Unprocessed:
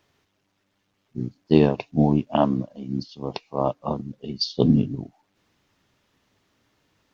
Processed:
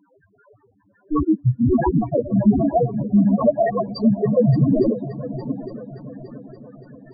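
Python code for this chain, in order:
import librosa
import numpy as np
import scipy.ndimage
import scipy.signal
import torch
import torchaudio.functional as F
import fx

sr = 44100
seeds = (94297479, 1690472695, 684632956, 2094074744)

p1 = fx.block_reorder(x, sr, ms=112.0, group=5)
p2 = fx.filter_lfo_lowpass(p1, sr, shape='sine', hz=5.4, low_hz=480.0, high_hz=1700.0, q=3.4)
p3 = fx.fold_sine(p2, sr, drive_db=19, ceiling_db=-1.5)
p4 = fx.spec_topn(p3, sr, count=2)
p5 = p4 + fx.echo_heads(p4, sr, ms=287, heads='second and third', feedback_pct=50, wet_db=-16.0, dry=0)
y = p5 * 10.0 ** (-1.5 / 20.0)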